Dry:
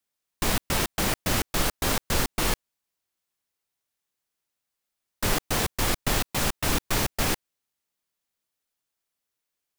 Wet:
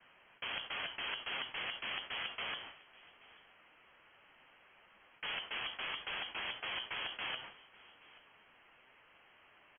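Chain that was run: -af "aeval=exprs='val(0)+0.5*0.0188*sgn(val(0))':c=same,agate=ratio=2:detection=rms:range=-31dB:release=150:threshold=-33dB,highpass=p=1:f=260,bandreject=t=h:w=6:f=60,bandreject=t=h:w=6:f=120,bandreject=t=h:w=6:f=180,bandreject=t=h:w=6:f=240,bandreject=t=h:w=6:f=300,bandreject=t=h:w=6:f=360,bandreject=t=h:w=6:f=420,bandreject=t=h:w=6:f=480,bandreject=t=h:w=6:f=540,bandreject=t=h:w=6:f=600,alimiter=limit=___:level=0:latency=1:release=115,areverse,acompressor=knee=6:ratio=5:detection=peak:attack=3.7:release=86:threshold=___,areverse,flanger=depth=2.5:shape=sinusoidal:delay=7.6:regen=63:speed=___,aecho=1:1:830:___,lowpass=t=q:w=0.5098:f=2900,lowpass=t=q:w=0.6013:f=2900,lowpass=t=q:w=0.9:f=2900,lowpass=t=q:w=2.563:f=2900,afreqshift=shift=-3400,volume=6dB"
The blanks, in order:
-16dB, -38dB, 0.68, 0.0794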